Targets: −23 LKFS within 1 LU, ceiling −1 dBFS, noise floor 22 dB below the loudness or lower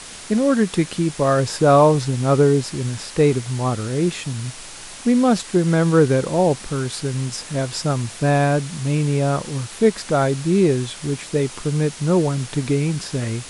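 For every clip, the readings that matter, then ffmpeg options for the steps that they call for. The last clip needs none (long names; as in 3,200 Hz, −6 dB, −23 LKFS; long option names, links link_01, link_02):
background noise floor −37 dBFS; target noise floor −42 dBFS; integrated loudness −19.5 LKFS; sample peak −3.5 dBFS; target loudness −23.0 LKFS
→ -af "afftdn=noise_reduction=6:noise_floor=-37"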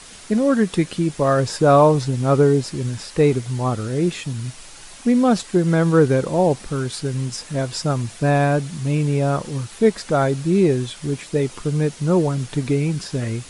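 background noise floor −41 dBFS; target noise floor −42 dBFS
→ -af "afftdn=noise_reduction=6:noise_floor=-41"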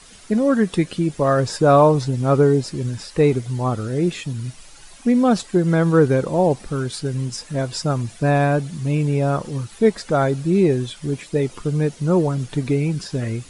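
background noise floor −44 dBFS; integrated loudness −20.0 LKFS; sample peak −3.5 dBFS; target loudness −23.0 LKFS
→ -af "volume=-3dB"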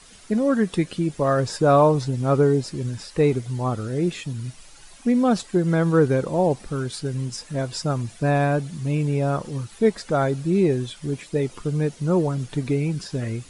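integrated loudness −23.0 LKFS; sample peak −6.5 dBFS; background noise floor −47 dBFS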